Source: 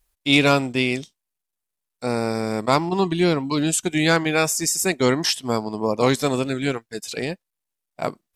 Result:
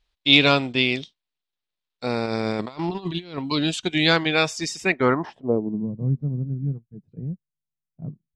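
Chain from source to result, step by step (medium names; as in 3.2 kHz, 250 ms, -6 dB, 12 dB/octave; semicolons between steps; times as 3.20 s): 2.26–3.38 s: compressor with a negative ratio -26 dBFS, ratio -0.5; low-pass sweep 3.8 kHz -> 150 Hz, 4.72–5.93 s; trim -2 dB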